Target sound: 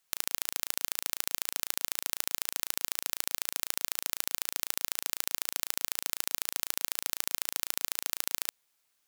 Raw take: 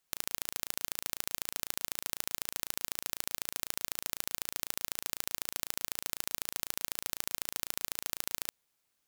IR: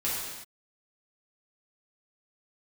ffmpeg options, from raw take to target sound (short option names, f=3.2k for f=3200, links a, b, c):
-af "lowshelf=f=500:g=-8.5,volume=4dB"